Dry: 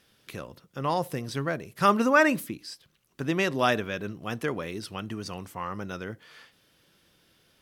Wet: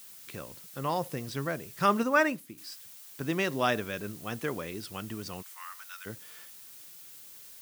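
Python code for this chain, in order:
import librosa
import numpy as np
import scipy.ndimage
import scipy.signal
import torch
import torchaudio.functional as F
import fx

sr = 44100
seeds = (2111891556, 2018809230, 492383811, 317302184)

y = fx.highpass(x, sr, hz=1300.0, slope=24, at=(5.41, 6.05), fade=0.02)
y = fx.dmg_noise_colour(y, sr, seeds[0], colour='blue', level_db=-46.0)
y = fx.upward_expand(y, sr, threshold_db=-37.0, expansion=1.5, at=(2.03, 2.58))
y = y * 10.0 ** (-3.5 / 20.0)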